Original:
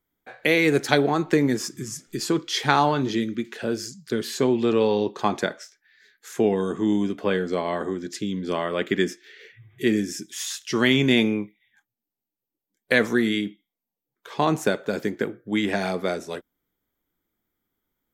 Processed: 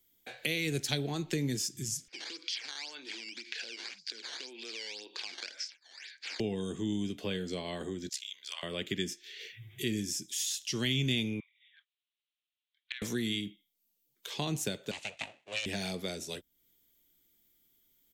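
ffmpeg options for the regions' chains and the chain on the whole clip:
ffmpeg -i in.wav -filter_complex "[0:a]asettb=1/sr,asplit=3[link_01][link_02][link_03];[link_01]atrim=end=2.084[link_04];[link_02]atrim=start=2.08:end=6.4,asetpts=PTS-STARTPTS,afade=type=in:duration=0.004:curve=qsin,afade=type=out:start_time=4.316:duration=0.004:curve=qsin,acompressor=threshold=-35dB:ratio=6:attack=3.2:release=140:knee=1:detection=peak,acrusher=samples=10:mix=1:aa=0.000001:lfo=1:lforange=16:lforate=1.9,highpass=frequency=350:width=0.5412,highpass=frequency=350:width=1.3066,equalizer=frequency=400:width_type=q:width=4:gain=-6,equalizer=frequency=630:width_type=q:width=4:gain=-5,equalizer=frequency=1600:width_type=q:width=4:gain=9,equalizer=frequency=2300:width_type=q:width=4:gain=10,equalizer=frequency=4700:width_type=q:width=4:gain=10,lowpass=frequency=6300:width=0.5412,lowpass=frequency=6300:width=1.3066[link_05];[link_03]atrim=start=6.396[link_06];[link_04][link_05]acrossfade=duration=0.004:curve1=hsin:curve2=qsin[link_07];[link_07][link_06]acrossfade=duration=0.004:curve1=qsin:curve2=hsin,asettb=1/sr,asplit=3[link_08][link_09][link_10];[link_08]atrim=end=8.094[link_11];[link_09]atrim=start=8.09:end=8.63,asetpts=PTS-STARTPTS,afade=type=in:duration=0.004:curve=qsin,afade=type=out:start_time=0.536:duration=0.004:curve=qsin,highpass=frequency=1000:width=0.5412,highpass=frequency=1000:width=1.3066,aeval=exprs='val(0)*sin(2*PI*33*n/s)':channel_layout=same[link_12];[link_10]atrim=start=8.626[link_13];[link_11][link_12]acrossfade=duration=0.004:curve1=hsin:curve2=qsin[link_14];[link_14][link_13]acrossfade=duration=0.004:curve1=qsin:curve2=hsin,asettb=1/sr,asplit=3[link_15][link_16][link_17];[link_15]atrim=end=11.404[link_18];[link_16]atrim=start=11.4:end=13.02,asetpts=PTS-STARTPTS,afade=type=in:duration=0.004:curve=qsin,afade=type=out:start_time=1.616:duration=0.004:curve=qsin,asuperpass=centerf=2100:order=12:qfactor=0.76,acompressor=threshold=-32dB:ratio=10:attack=3.2:release=140:knee=1:detection=peak[link_19];[link_17]atrim=start=13.016[link_20];[link_18][link_19]acrossfade=duration=0.004:curve1=hsin:curve2=qsin[link_21];[link_21][link_20]acrossfade=duration=0.004:curve1=qsin:curve2=hsin,asettb=1/sr,asplit=3[link_22][link_23][link_24];[link_22]atrim=end=14.914[link_25];[link_23]atrim=start=14.91:end=15.66,asetpts=PTS-STARTPTS,afade=type=in:duration=0.004:curve=qsin,afade=type=out:start_time=0.746:duration=0.004:curve=qsin,aeval=exprs='abs(val(0))':channel_layout=same,highpass=390,equalizer=frequency=440:width_type=q:width=4:gain=-5,equalizer=frequency=2500:width_type=q:width=4:gain=8,equalizer=frequency=5200:width_type=q:width=4:gain=-7,lowpass=frequency=8400:width=0.5412,lowpass=frequency=8400:width=1.3066[link_26];[link_24]atrim=start=15.656[link_27];[link_25][link_26]acrossfade=duration=0.004:curve1=hsin:curve2=qsin[link_28];[link_28][link_27]acrossfade=duration=0.004:curve1=qsin:curve2=hsin,firequalizer=gain_entry='entry(340,0);entry(1200,-7);entry(2800,11);entry(6900,13)':delay=0.05:min_phase=1,acrossover=split=130[link_29][link_30];[link_30]acompressor=threshold=-45dB:ratio=2[link_31];[link_29][link_31]amix=inputs=2:normalize=0" out.wav

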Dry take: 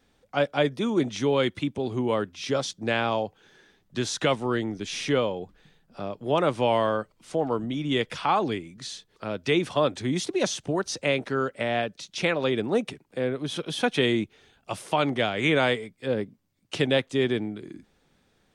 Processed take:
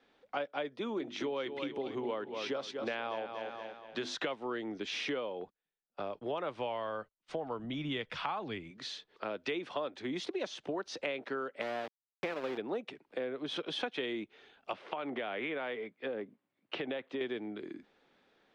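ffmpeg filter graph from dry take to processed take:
ffmpeg -i in.wav -filter_complex "[0:a]asettb=1/sr,asplit=3[link_01][link_02][link_03];[link_01]atrim=end=0.974[link_04];[link_02]atrim=start=0.97:end=4.15,asetpts=PTS-STARTPTS,afade=type=in:duration=0.004:curve=qsin,afade=type=out:start_time=3.176:duration=0.004:curve=qsin,bandreject=frequency=50:width_type=h:width=6,bandreject=frequency=100:width_type=h:width=6,bandreject=frequency=150:width_type=h:width=6,bandreject=frequency=200:width_type=h:width=6,bandreject=frequency=250:width_type=h:width=6,bandreject=frequency=300:width_type=h:width=6,bandreject=frequency=350:width_type=h:width=6,aecho=1:1:236|472|708|944:0.282|0.121|0.0521|0.0224,atrim=end_sample=140238[link_05];[link_03]atrim=start=4.146[link_06];[link_04][link_05]acrossfade=duration=0.004:curve1=hsin:curve2=qsin[link_07];[link_07][link_06]acrossfade=duration=0.004:curve1=qsin:curve2=hsin,asettb=1/sr,asplit=3[link_08][link_09][link_10];[link_08]atrim=end=5.414[link_11];[link_09]atrim=start=5.41:end=8.71,asetpts=PTS-STARTPTS,afade=type=in:duration=0.004:curve=qsin,afade=type=out:start_time=3.296:duration=0.004:curve=qsin,agate=range=-32dB:threshold=-49dB:ratio=16:release=100:detection=peak,asubboost=boost=10:cutoff=120[link_12];[link_10]atrim=start=8.706[link_13];[link_11][link_12]acrossfade=duration=0.004:curve1=hsin:curve2=qsin[link_14];[link_14][link_13]acrossfade=duration=0.004:curve1=qsin:curve2=hsin,asettb=1/sr,asplit=3[link_15][link_16][link_17];[link_15]atrim=end=11.614[link_18];[link_16]atrim=start=11.61:end=12.58,asetpts=PTS-STARTPTS,afade=type=in:duration=0.004:curve=qsin,afade=type=out:start_time=0.966:duration=0.004:curve=qsin,lowpass=frequency=1300:poles=1,aeval=exprs='val(0)*gte(abs(val(0)),0.0398)':channel_layout=same[link_19];[link_17]atrim=start=12.576[link_20];[link_18][link_19]acrossfade=duration=0.004:curve1=hsin:curve2=qsin[link_21];[link_21][link_20]acrossfade=duration=0.004:curve1=qsin:curve2=hsin,asettb=1/sr,asplit=3[link_22][link_23][link_24];[link_22]atrim=end=14.734[link_25];[link_23]atrim=start=14.73:end=17.21,asetpts=PTS-STARTPTS,afade=type=in:duration=0.004:curve=qsin,afade=type=out:start_time=2.476:duration=0.004:curve=qsin,highpass=110,lowpass=3000,acompressor=threshold=-27dB:ratio=6:attack=3.2:release=140:knee=1:detection=peak[link_26];[link_24]atrim=start=17.206[link_27];[link_25][link_26]acrossfade=duration=0.004:curve1=hsin:curve2=qsin[link_28];[link_28][link_27]acrossfade=duration=0.004:curve1=qsin:curve2=hsin,acrossover=split=250 4500:gain=0.112 1 0.0708[link_29][link_30][link_31];[link_29][link_30][link_31]amix=inputs=3:normalize=0,acompressor=threshold=-34dB:ratio=6" out.wav

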